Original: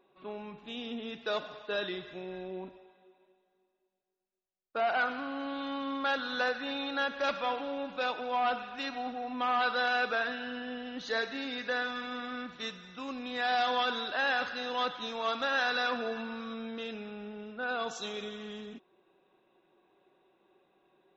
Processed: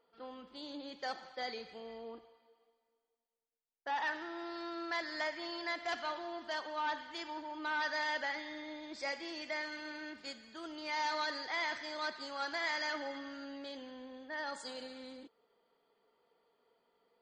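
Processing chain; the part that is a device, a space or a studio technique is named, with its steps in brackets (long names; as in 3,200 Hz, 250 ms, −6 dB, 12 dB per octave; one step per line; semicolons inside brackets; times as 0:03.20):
nightcore (speed change +23%)
level −6.5 dB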